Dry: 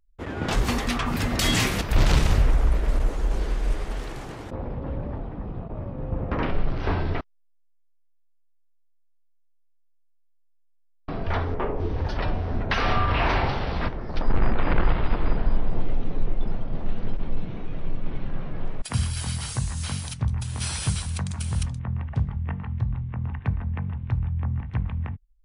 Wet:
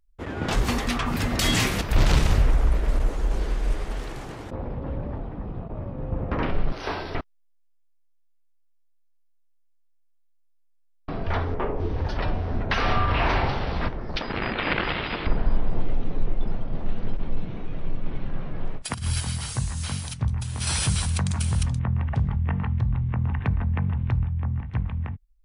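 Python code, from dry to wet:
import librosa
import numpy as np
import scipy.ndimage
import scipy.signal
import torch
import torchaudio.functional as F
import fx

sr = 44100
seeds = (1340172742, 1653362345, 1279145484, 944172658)

y = fx.bass_treble(x, sr, bass_db=-14, treble_db=12, at=(6.72, 7.15))
y = fx.weighting(y, sr, curve='D', at=(14.16, 15.27))
y = fx.over_compress(y, sr, threshold_db=-27.0, ratio=-0.5, at=(18.76, 19.19), fade=0.02)
y = fx.env_flatten(y, sr, amount_pct=50, at=(20.67, 24.24))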